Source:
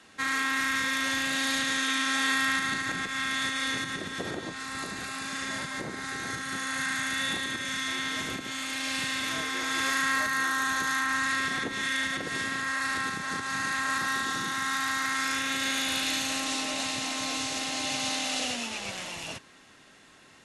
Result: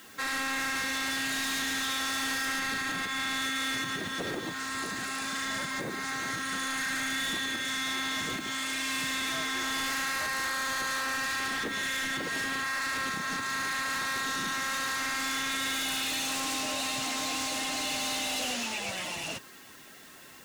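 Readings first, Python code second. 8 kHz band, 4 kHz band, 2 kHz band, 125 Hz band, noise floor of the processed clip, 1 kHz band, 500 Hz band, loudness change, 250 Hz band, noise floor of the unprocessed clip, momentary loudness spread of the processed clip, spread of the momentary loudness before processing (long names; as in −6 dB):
−0.5 dB, −1.0 dB, −2.5 dB, −2.0 dB, −50 dBFS, −2.0 dB, −0.5 dB, −1.5 dB, −2.0 dB, −55 dBFS, 4 LU, 8 LU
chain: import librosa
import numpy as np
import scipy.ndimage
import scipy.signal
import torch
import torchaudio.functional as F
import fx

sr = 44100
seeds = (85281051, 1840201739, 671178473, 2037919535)

p1 = fx.spec_quant(x, sr, step_db=15)
p2 = fx.low_shelf(p1, sr, hz=140.0, db=-5.0)
p3 = fx.fold_sine(p2, sr, drive_db=14, ceiling_db=-16.0)
p4 = p2 + (p3 * 10.0 ** (-10.5 / 20.0))
p5 = fx.quant_dither(p4, sr, seeds[0], bits=8, dither='triangular')
y = p5 * 10.0 ** (-7.0 / 20.0)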